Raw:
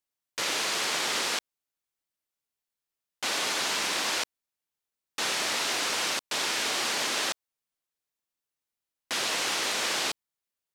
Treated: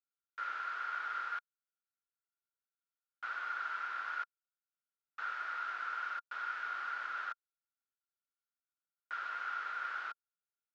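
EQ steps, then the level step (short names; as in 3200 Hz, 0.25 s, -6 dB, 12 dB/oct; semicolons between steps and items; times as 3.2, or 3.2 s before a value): band-pass 1400 Hz, Q 17; air absorption 110 m; +6.5 dB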